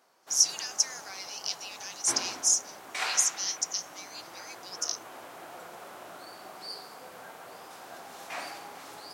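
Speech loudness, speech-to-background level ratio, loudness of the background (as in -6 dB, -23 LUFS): -28.0 LUFS, 14.0 dB, -42.0 LUFS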